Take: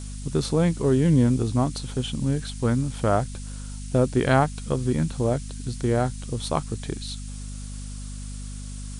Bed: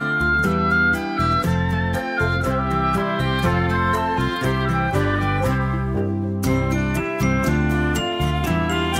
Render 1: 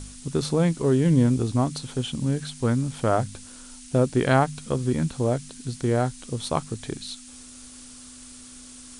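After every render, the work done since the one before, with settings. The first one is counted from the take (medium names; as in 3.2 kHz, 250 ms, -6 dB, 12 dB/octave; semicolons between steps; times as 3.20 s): de-hum 50 Hz, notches 4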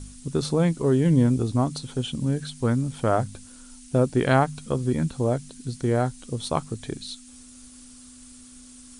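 noise reduction 6 dB, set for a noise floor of -45 dBFS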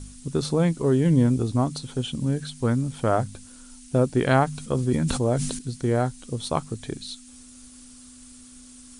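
4.45–5.59 s: decay stretcher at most 46 dB/s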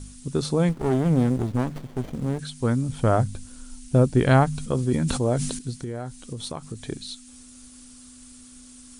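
0.69–2.39 s: sliding maximum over 33 samples; 2.89–4.71 s: bass shelf 130 Hz +10.5 dB; 5.71–6.78 s: compression, threshold -28 dBFS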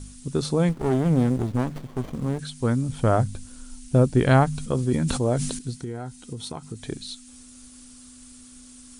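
1.88–2.28 s: peaking EQ 1.1 kHz +8.5 dB 0.22 oct; 5.75–6.83 s: comb of notches 570 Hz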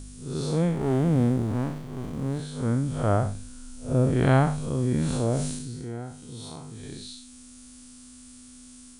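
spectral blur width 154 ms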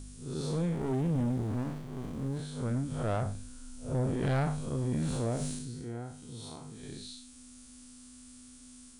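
saturation -20 dBFS, distortion -11 dB; flange 0.8 Hz, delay 0.8 ms, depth 4.6 ms, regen -82%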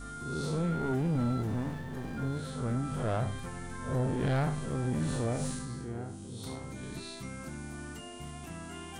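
add bed -23 dB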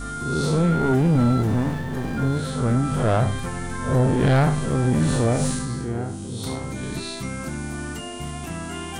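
trim +11.5 dB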